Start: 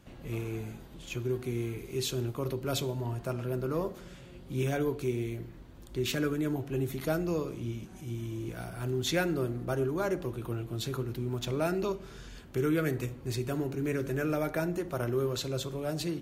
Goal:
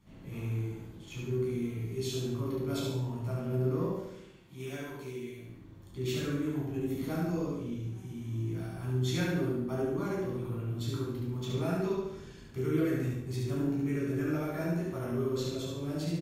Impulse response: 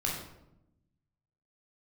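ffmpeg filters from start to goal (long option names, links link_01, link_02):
-filter_complex "[0:a]asettb=1/sr,asplit=3[link_01][link_02][link_03];[link_01]atrim=end=4.044[link_04];[link_02]atrim=start=4.04:end=5.47,asetpts=PTS-STARTPTS,afade=type=in:duration=0.004:curve=qsin,afade=type=out:start_time=1.426:duration=0.004:curve=qsin,lowshelf=frequency=500:gain=-11.5[link_05];[link_03]atrim=start=5.466[link_06];[link_04][link_05]acrossfade=duration=0.004:curve1=hsin:curve2=qsin[link_07];[link_07][link_06]acrossfade=duration=0.004:curve1=qsin:curve2=hsin,aecho=1:1:71|142|213|284|355|426:0.708|0.311|0.137|0.0603|0.0265|0.0117[link_08];[1:a]atrim=start_sample=2205,asetrate=66150,aresample=44100[link_09];[link_08][link_09]afir=irnorm=-1:irlink=0,volume=-8.5dB"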